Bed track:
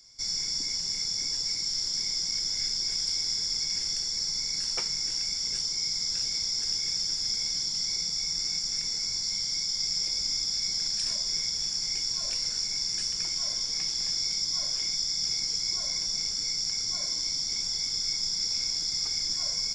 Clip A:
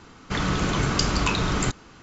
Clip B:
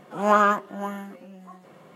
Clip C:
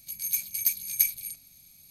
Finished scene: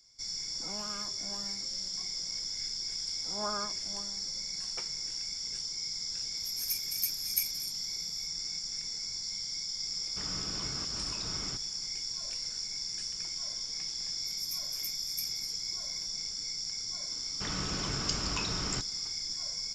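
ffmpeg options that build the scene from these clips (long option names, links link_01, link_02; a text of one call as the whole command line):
ffmpeg -i bed.wav -i cue0.wav -i cue1.wav -i cue2.wav -filter_complex "[2:a]asplit=2[link_01][link_02];[3:a]asplit=2[link_03][link_04];[1:a]asplit=2[link_05][link_06];[0:a]volume=-7dB[link_07];[link_01]acrossover=split=180|3000[link_08][link_09][link_10];[link_09]acompressor=threshold=-29dB:ratio=6:attack=3.2:release=140:knee=2.83:detection=peak[link_11];[link_08][link_11][link_10]amix=inputs=3:normalize=0[link_12];[link_02]lowpass=1500[link_13];[link_05]alimiter=limit=-16dB:level=0:latency=1:release=163[link_14];[link_06]highshelf=frequency=6300:gain=10[link_15];[link_12]atrim=end=1.95,asetpts=PTS-STARTPTS,volume=-14dB,afade=type=in:duration=0.004:curve=hsin,afade=type=out:start_time=1.946:duration=0.004:curve=hsin,adelay=500[link_16];[link_13]atrim=end=1.95,asetpts=PTS-STARTPTS,volume=-17.5dB,afade=type=in:duration=0.004:curve=hsin,afade=type=out:start_time=1.946:duration=0.004:curve=hsin,adelay=138033S[link_17];[link_03]atrim=end=1.9,asetpts=PTS-STARTPTS,volume=-7.5dB,afade=type=in:duration=0.004:curve=hsin,afade=type=out:start_time=1.896:duration=0.004:curve=hsin,adelay=6370[link_18];[link_14]atrim=end=2.02,asetpts=PTS-STARTPTS,volume=-17dB,afade=type=in:duration=0.004:curve=hsin,afade=type=out:start_time=2.016:duration=0.004:curve=hsin,adelay=434826S[link_19];[link_04]atrim=end=1.9,asetpts=PTS-STARTPTS,volume=-16.5dB,afade=type=in:duration=0.004:curve=hsin,afade=type=out:start_time=1.896:duration=0.004:curve=hsin,adelay=14180[link_20];[link_15]atrim=end=2.02,asetpts=PTS-STARTPTS,volume=-13dB,afade=type=in:duration=0.004:curve=hsin,afade=type=out:start_time=2.016:duration=0.004:curve=hsin,adelay=17100[link_21];[link_07][link_16][link_17][link_18][link_19][link_20][link_21]amix=inputs=7:normalize=0" out.wav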